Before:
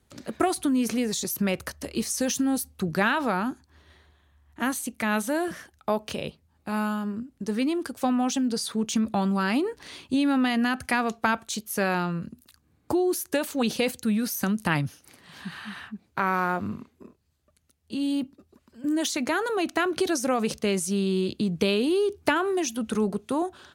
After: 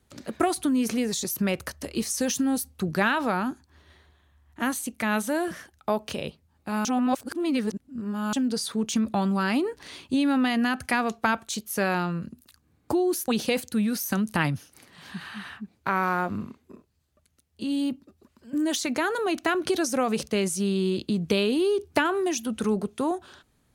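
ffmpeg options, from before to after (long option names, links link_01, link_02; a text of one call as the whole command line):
ffmpeg -i in.wav -filter_complex "[0:a]asplit=4[link_01][link_02][link_03][link_04];[link_01]atrim=end=6.852[link_05];[link_02]atrim=start=6.848:end=8.332,asetpts=PTS-STARTPTS,areverse[link_06];[link_03]atrim=start=8.328:end=13.282[link_07];[link_04]atrim=start=13.588[link_08];[link_05][link_06]acrossfade=duration=0.004:curve1=hsin:curve2=hsin[link_09];[link_09][link_07]acrossfade=duration=0.004:curve1=hsin:curve2=hsin[link_10];[link_10][link_08]acrossfade=duration=0.004:curve1=hsin:curve2=hsin" out.wav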